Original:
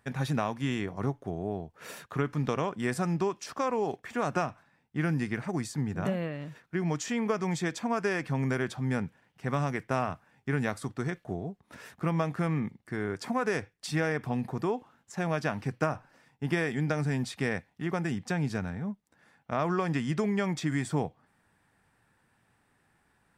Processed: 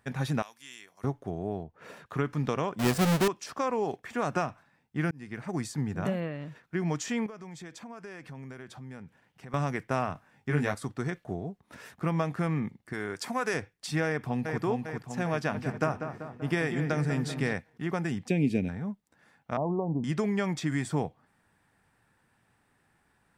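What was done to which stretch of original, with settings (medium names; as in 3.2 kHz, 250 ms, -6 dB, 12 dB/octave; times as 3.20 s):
0.42–1.04 s: differentiator
1.63–2.06 s: low-pass 1.5 kHz 6 dB/octave
2.79–3.28 s: square wave that keeps the level
5.11–5.59 s: fade in
6.20–6.63 s: treble shelf 5.5 kHz -7.5 dB
7.26–9.54 s: compression 3:1, threshold -45 dBFS
10.13–10.75 s: doubling 20 ms -4 dB
12.93–13.54 s: tilt EQ +2 dB/octave
14.05–14.62 s: echo throw 400 ms, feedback 60%, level -4 dB
15.35–17.54 s: filtered feedback delay 193 ms, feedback 59%, low-pass 2.4 kHz, level -8 dB
18.28–18.69 s: FFT filter 140 Hz 0 dB, 260 Hz +10 dB, 520 Hz +4 dB, 1.3 kHz -26 dB, 2.4 kHz +8 dB, 5.4 kHz -8 dB, 8.9 kHz -2 dB
19.57–20.04 s: steep low-pass 970 Hz 72 dB/octave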